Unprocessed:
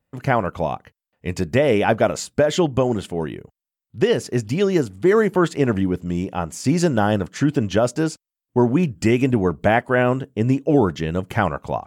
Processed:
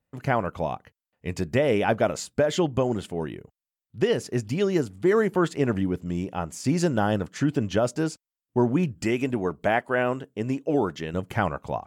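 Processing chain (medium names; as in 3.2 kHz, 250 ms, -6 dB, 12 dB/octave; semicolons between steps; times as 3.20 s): 9.04–11.14 s: bass shelf 180 Hz -10 dB; trim -5 dB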